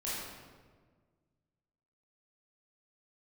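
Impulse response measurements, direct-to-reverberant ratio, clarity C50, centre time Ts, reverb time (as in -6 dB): -9.5 dB, -2.5 dB, 105 ms, 1.6 s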